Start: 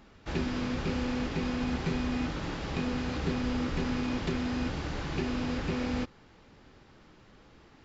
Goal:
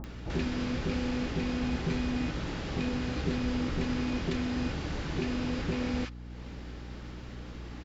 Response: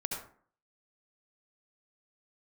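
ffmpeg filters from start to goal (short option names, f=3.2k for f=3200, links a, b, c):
-filter_complex "[0:a]acompressor=mode=upward:threshold=-35dB:ratio=2.5,acrossover=split=1000[a][b];[b]adelay=40[c];[a][c]amix=inputs=2:normalize=0,aeval=exprs='val(0)+0.00794*(sin(2*PI*60*n/s)+sin(2*PI*2*60*n/s)/2+sin(2*PI*3*60*n/s)/3+sin(2*PI*4*60*n/s)/4+sin(2*PI*5*60*n/s)/5)':c=same"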